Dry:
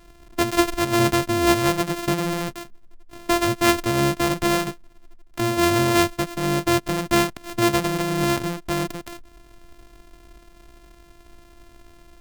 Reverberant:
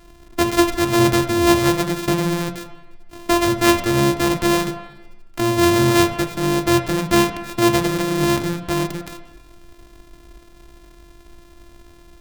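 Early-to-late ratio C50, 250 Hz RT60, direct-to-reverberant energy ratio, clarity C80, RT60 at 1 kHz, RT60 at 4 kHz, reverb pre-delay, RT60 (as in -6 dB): 9.5 dB, 1.0 s, 7.0 dB, 11.5 dB, 1.1 s, 1.1 s, 6 ms, 1.1 s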